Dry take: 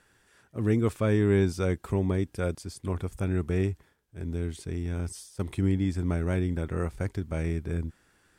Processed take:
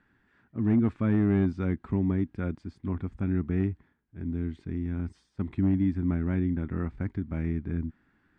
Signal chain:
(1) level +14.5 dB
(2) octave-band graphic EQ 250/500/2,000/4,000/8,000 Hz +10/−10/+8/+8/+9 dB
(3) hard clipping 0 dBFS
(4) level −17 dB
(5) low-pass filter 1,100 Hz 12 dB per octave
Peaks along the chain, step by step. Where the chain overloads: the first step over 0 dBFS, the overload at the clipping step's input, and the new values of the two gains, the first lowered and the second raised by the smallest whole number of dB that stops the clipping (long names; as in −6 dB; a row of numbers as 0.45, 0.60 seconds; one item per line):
+1.5, +5.0, 0.0, −17.0, −16.5 dBFS
step 1, 5.0 dB
step 1 +9.5 dB, step 4 −12 dB